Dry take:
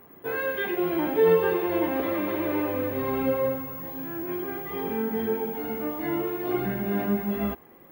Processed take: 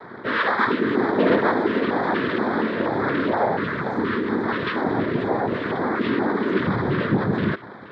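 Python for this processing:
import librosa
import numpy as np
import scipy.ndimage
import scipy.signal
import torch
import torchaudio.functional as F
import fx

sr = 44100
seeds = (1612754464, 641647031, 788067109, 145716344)

p1 = fx.peak_eq(x, sr, hz=1400.0, db=11.5, octaves=0.78)
p2 = fx.over_compress(p1, sr, threshold_db=-34.0, ratio=-1.0)
p3 = p1 + (p2 * 10.0 ** (1.0 / 20.0))
p4 = fx.noise_vocoder(p3, sr, seeds[0], bands=6)
p5 = fx.filter_lfo_notch(p4, sr, shape='square', hz=2.1, low_hz=800.0, high_hz=2800.0, q=1.4)
p6 = fx.air_absorb(p5, sr, metres=190.0)
y = p6 * 10.0 ** (3.0 / 20.0)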